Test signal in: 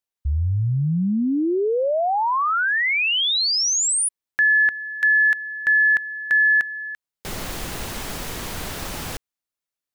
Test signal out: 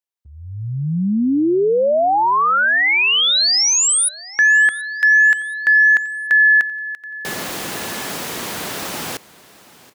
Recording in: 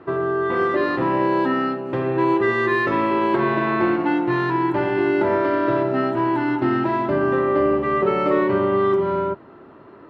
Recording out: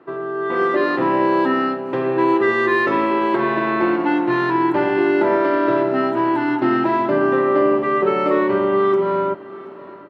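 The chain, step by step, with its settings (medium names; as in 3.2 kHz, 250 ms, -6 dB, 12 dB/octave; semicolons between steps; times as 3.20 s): high-pass 190 Hz 12 dB/octave; level rider gain up to 10 dB; on a send: feedback delay 728 ms, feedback 43%, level -20.5 dB; on the sum: trim -4.5 dB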